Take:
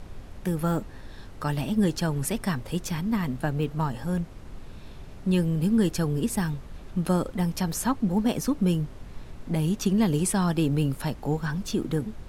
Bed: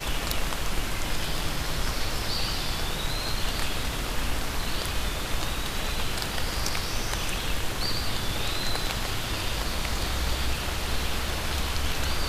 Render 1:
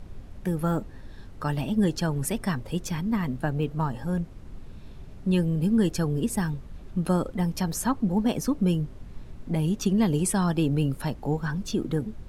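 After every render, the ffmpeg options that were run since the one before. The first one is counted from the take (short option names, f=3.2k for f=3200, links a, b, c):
-af "afftdn=nr=6:nf=-43"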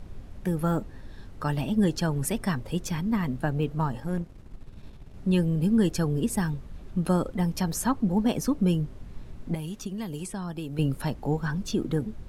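-filter_complex "[0:a]asettb=1/sr,asplit=3[a][b][c];[a]atrim=end=4.004[d];[b]atrim=start=4:end=5.14,asetpts=PTS-STARTPTS,afade=t=in:d=0.004:c=qsin,afade=t=out:st=1.136:d=0.004:c=qsin,aeval=exprs='if(lt(val(0),0),0.447*val(0),val(0))':c=same[e];[c]atrim=start=5.136[f];[d][e]acrossfade=d=0.004:c1=hsin:c2=qsin[g];[g][f]acrossfade=d=0.004:c1=qsin:c2=hsin,asettb=1/sr,asplit=3[h][i][j];[h]atrim=end=9.544[k];[i]atrim=start=9.54:end=10.79,asetpts=PTS-STARTPTS,afade=t=in:d=0.004:c=qsin,afade=t=out:st=1.246:d=0.004:c=qsin,acrossover=split=880|7800[l][m][n];[l]acompressor=threshold=-34dB:ratio=4[o];[m]acompressor=threshold=-45dB:ratio=4[p];[n]acompressor=threshold=-49dB:ratio=4[q];[o][p][q]amix=inputs=3:normalize=0[r];[j]atrim=start=10.786[s];[k][r]acrossfade=d=0.004:c1=hsin:c2=qsin[t];[t][s]acrossfade=d=0.004:c1=qsin:c2=hsin"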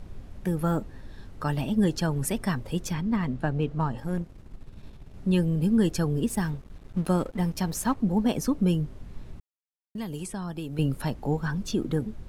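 -filter_complex "[0:a]asettb=1/sr,asplit=3[a][b][c];[a]atrim=end=2.934[d];[b]atrim=start=2.93:end=3.98,asetpts=PTS-STARTPTS,afade=t=in:d=0.004:c=qsin,afade=t=out:st=1.046:d=0.004:c=qsin,adynamicsmooth=sensitivity=4.5:basefreq=7k[e];[c]atrim=start=3.976[f];[d][e]acrossfade=d=0.004:c1=hsin:c2=qsin[g];[g][f]acrossfade=d=0.004:c1=qsin:c2=hsin,asettb=1/sr,asplit=3[h][i][j];[h]atrim=end=6.284[k];[i]atrim=start=6.28:end=8,asetpts=PTS-STARTPTS,afade=t=in:d=0.004:c=qsin,afade=t=out:st=1.716:d=0.004:c=qsin,aeval=exprs='sgn(val(0))*max(abs(val(0))-0.00531,0)':c=same[l];[j]atrim=start=7.996[m];[k][l]acrossfade=d=0.004:c1=hsin:c2=qsin[n];[n][m]acrossfade=d=0.004:c1=qsin:c2=hsin,asplit=3[o][p][q];[o]atrim=end=9.4,asetpts=PTS-STARTPTS,afade=t=out:st=9.396:d=0.004:c=hsin[r];[p]atrim=start=9.4:end=9.95,asetpts=PTS-STARTPTS,volume=0[s];[q]atrim=start=9.95,asetpts=PTS-STARTPTS,afade=t=in:d=0.004:c=hsin[t];[r][s][t]concat=n=3:v=0:a=1"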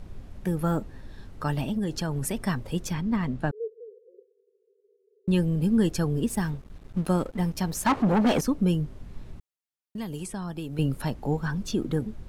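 -filter_complex "[0:a]asettb=1/sr,asplit=3[a][b][c];[a]atrim=end=1.694[d];[b]atrim=start=1.69:end=2.45,asetpts=PTS-STARTPTS,afade=t=in:d=0.004:c=qsin,afade=t=out:st=0.756:d=0.004:c=qsin,acompressor=threshold=-24dB:ratio=6:attack=3.2:release=140:knee=1:detection=peak[e];[c]atrim=start=2.446[f];[d][e]acrossfade=d=0.004:c1=hsin:c2=qsin[g];[g][f]acrossfade=d=0.004:c1=qsin:c2=hsin,asettb=1/sr,asplit=3[h][i][j];[h]atrim=end=3.514[k];[i]atrim=start=3.51:end=5.28,asetpts=PTS-STARTPTS,afade=t=in:d=0.004:c=qsin,afade=t=out:st=1.766:d=0.004:c=qsin,asuperpass=centerf=440:order=12:qfactor=3.9[l];[j]atrim=start=5.276[m];[k][l]acrossfade=d=0.004:c1=hsin:c2=qsin[n];[n][m]acrossfade=d=0.004:c1=qsin:c2=hsin,asettb=1/sr,asplit=3[o][p][q];[o]atrim=end=7.864[r];[p]atrim=start=7.86:end=8.41,asetpts=PTS-STARTPTS,afade=t=in:d=0.004:c=qsin,afade=t=out:st=0.546:d=0.004:c=qsin,asplit=2[s][t];[t]highpass=f=720:p=1,volume=26dB,asoftclip=type=tanh:threshold=-14dB[u];[s][u]amix=inputs=2:normalize=0,lowpass=f=2.2k:p=1,volume=-6dB[v];[q]atrim=start=8.406[w];[r][v]acrossfade=d=0.004:c1=hsin:c2=qsin[x];[x][w]acrossfade=d=0.004:c1=qsin:c2=hsin"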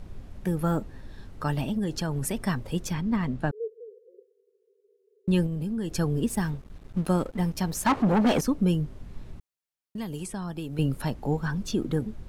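-filter_complex "[0:a]asettb=1/sr,asplit=3[a][b][c];[a]atrim=end=5.464[d];[b]atrim=start=5.46:end=5.94,asetpts=PTS-STARTPTS,afade=t=in:d=0.004:c=qsin,afade=t=out:st=0.476:d=0.004:c=qsin,acompressor=threshold=-27dB:ratio=6:attack=3.2:release=140:knee=1:detection=peak[e];[c]atrim=start=5.936[f];[d][e]acrossfade=d=0.004:c1=hsin:c2=qsin[g];[g][f]acrossfade=d=0.004:c1=qsin:c2=hsin"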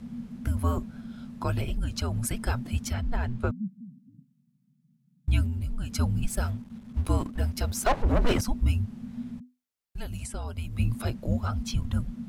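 -af "afreqshift=-250"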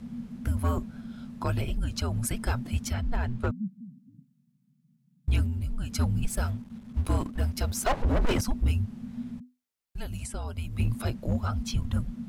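-af "asoftclip=type=hard:threshold=-19dB"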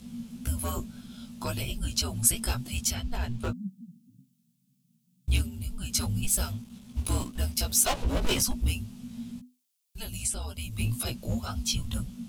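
-af "aexciter=amount=3:drive=7.1:freq=2.6k,flanger=delay=15.5:depth=2.2:speed=1.9"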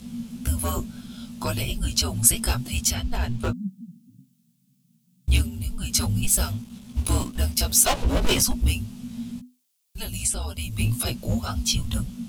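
-af "volume=5.5dB"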